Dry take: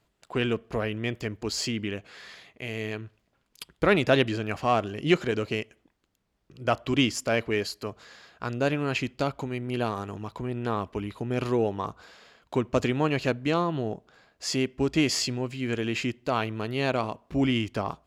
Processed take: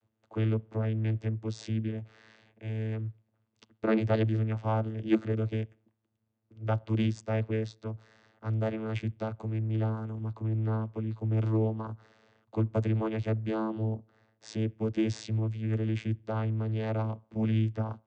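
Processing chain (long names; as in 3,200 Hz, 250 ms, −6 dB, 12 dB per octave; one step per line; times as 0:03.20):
channel vocoder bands 16, saw 110 Hz
level −1.5 dB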